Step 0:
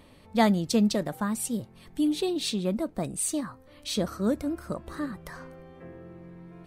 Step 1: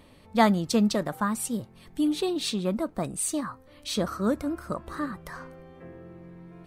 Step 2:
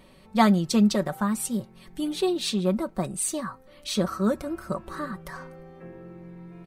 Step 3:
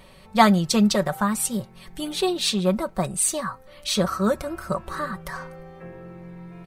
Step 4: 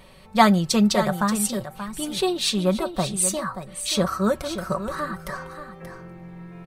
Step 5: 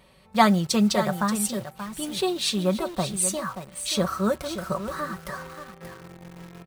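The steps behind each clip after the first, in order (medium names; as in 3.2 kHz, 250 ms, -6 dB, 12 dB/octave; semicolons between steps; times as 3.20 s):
dynamic bell 1.2 kHz, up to +7 dB, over -49 dBFS, Q 1.5
comb 5.3 ms, depth 58%
peaking EQ 280 Hz -9.5 dB 0.89 oct; trim +6 dB
delay 581 ms -10.5 dB
high-pass 41 Hz 12 dB/octave; in parallel at -4 dB: bit crusher 6-bit; on the sum: trim -6.5 dB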